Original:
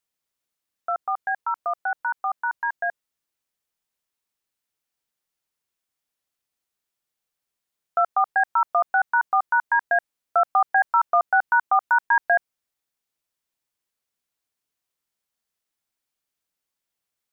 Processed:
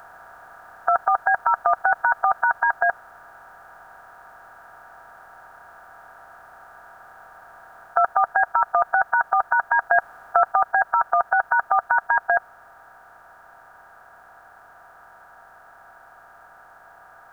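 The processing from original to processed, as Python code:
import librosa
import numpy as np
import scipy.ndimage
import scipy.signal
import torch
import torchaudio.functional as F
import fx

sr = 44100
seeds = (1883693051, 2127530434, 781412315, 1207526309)

y = fx.bin_compress(x, sr, power=0.4)
y = fx.bass_treble(y, sr, bass_db=7, treble_db=13)
y = fx.rider(y, sr, range_db=10, speed_s=0.5)
y = fx.low_shelf(y, sr, hz=330.0, db=8.0)
y = y * librosa.db_to_amplitude(-1.0)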